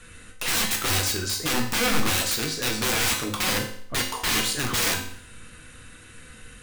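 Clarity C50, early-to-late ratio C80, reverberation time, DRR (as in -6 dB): 7.0 dB, 10.5 dB, 0.60 s, 0.0 dB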